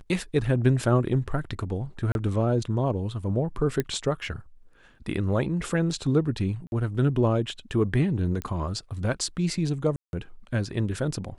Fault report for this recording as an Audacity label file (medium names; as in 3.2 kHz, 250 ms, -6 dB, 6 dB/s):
2.120000	2.150000	dropout 31 ms
3.800000	3.800000	pop -13 dBFS
6.670000	6.720000	dropout 51 ms
8.420000	8.420000	pop -17 dBFS
9.960000	10.130000	dropout 171 ms